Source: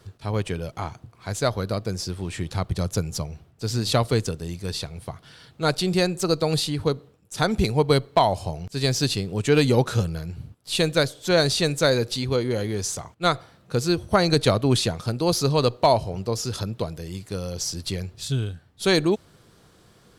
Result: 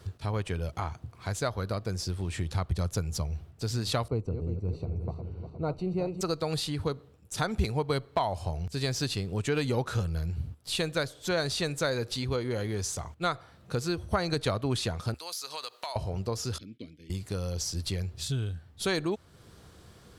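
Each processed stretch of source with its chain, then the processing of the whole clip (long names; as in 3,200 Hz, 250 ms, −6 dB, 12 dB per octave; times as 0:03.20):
0:04.08–0:06.21: feedback delay that plays each chunk backwards 178 ms, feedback 72%, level −11 dB + moving average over 26 samples + one half of a high-frequency compander decoder only
0:15.14–0:15.96: high-pass filter 1,200 Hz + high-shelf EQ 7,800 Hz +7.5 dB + downward compressor 3 to 1, threshold −34 dBFS
0:16.58–0:17.10: downward expander −34 dBFS + formant filter i + high-shelf EQ 4,800 Hz +10 dB
whole clip: dynamic equaliser 1,300 Hz, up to +5 dB, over −37 dBFS, Q 0.75; downward compressor 2 to 1, threshold −35 dBFS; parametric band 74 Hz +10.5 dB 0.64 octaves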